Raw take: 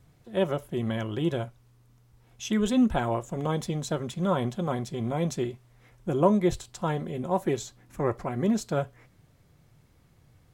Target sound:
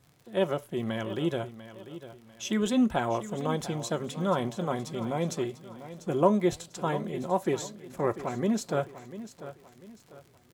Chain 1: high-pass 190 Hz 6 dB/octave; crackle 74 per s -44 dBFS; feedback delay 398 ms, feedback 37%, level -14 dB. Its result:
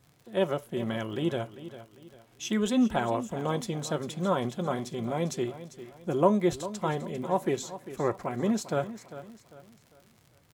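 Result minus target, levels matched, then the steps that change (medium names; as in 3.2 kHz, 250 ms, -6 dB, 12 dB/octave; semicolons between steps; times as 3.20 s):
echo 297 ms early
change: feedback delay 695 ms, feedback 37%, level -14 dB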